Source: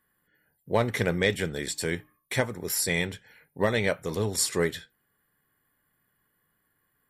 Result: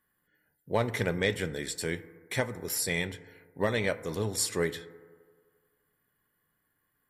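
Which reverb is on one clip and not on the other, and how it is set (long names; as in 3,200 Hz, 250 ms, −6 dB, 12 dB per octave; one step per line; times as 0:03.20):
feedback delay network reverb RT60 1.8 s, low-frequency decay 0.8×, high-frequency decay 0.25×, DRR 14.5 dB
level −3.5 dB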